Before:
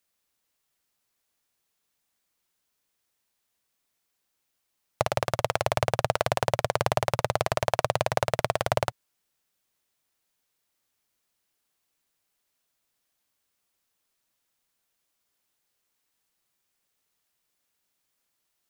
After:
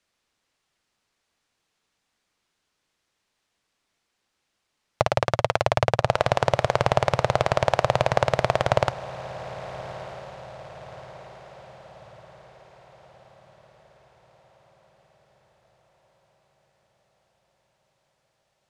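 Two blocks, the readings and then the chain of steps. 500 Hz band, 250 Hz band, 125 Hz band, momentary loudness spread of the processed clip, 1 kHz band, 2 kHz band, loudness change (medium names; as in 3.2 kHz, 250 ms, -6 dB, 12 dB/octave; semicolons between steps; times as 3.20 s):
+4.5 dB, +5.0 dB, +5.0 dB, 19 LU, +4.5 dB, +4.0 dB, +3.5 dB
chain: in parallel at -1.5 dB: peak limiter -15 dBFS, peak gain reduction 10.5 dB; on the sum: distance through air 80 m; echo that smears into a reverb 1270 ms, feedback 51%, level -15 dB; trim +2 dB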